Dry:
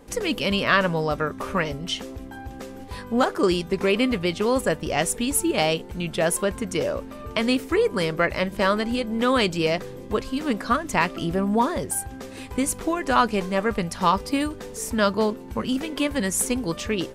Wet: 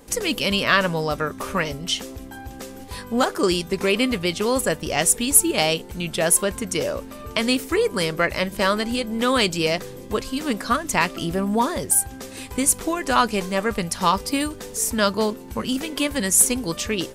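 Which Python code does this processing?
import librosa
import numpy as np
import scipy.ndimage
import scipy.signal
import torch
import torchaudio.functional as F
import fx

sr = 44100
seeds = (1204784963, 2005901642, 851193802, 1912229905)

y = fx.high_shelf(x, sr, hz=4100.0, db=10.5)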